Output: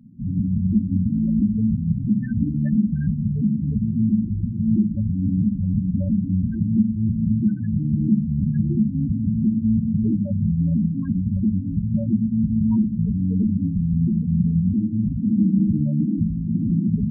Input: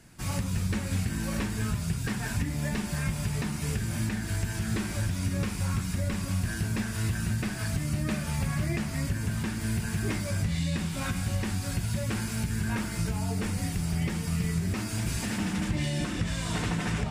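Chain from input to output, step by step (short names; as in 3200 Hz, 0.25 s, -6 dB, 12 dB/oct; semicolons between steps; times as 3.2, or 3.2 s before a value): bell 220 Hz +12.5 dB 0.99 oct; loudest bins only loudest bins 8; gain +3 dB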